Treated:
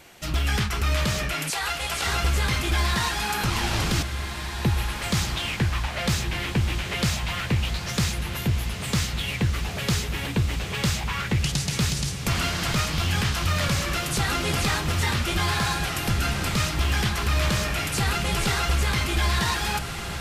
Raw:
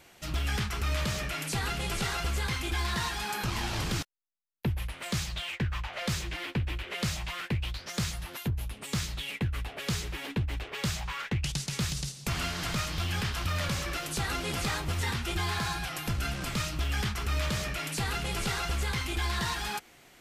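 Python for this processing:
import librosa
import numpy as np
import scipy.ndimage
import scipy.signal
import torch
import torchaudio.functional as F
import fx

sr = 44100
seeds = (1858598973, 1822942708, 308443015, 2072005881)

p1 = fx.highpass(x, sr, hz=540.0, slope=24, at=(1.5, 2.07))
p2 = p1 + fx.echo_diffused(p1, sr, ms=1656, feedback_pct=52, wet_db=-8, dry=0)
y = p2 * 10.0 ** (6.5 / 20.0)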